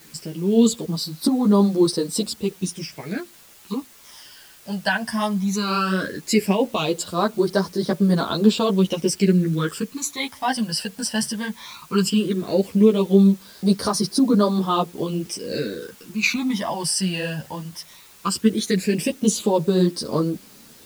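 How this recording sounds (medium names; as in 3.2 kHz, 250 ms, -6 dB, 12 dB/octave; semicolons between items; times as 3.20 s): phasing stages 12, 0.16 Hz, lowest notch 380–2600 Hz; a quantiser's noise floor 8-bit, dither triangular; a shimmering, thickened sound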